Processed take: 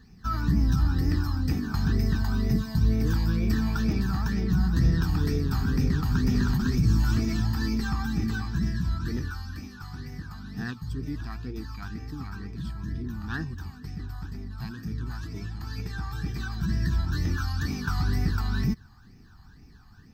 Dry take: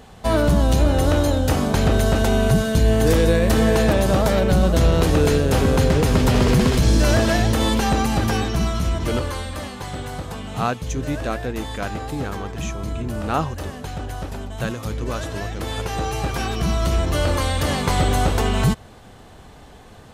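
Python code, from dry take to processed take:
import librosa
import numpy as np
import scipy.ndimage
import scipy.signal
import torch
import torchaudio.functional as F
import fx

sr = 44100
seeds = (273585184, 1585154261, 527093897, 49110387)

y = fx.phaser_stages(x, sr, stages=12, low_hz=440.0, high_hz=1000.0, hz=2.1, feedback_pct=40)
y = fx.fixed_phaser(y, sr, hz=2100.0, stages=6)
y = fx.formant_shift(y, sr, semitones=5)
y = y * 10.0 ** (-6.5 / 20.0)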